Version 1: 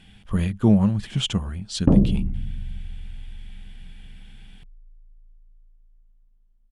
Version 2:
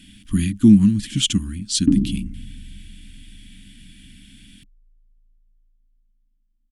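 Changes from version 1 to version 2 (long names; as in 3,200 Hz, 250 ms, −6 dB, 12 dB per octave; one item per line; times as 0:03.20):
background −7.5 dB
master: add drawn EQ curve 160 Hz 0 dB, 290 Hz +14 dB, 520 Hz −29 dB, 1,800 Hz +1 dB, 9,700 Hz +14 dB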